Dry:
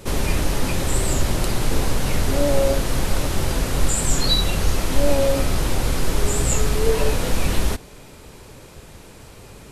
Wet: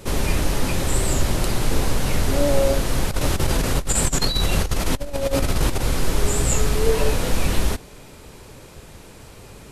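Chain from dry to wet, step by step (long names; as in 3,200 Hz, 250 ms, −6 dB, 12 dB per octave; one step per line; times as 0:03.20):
0:03.11–0:05.81: compressor whose output falls as the input rises −19 dBFS, ratio −0.5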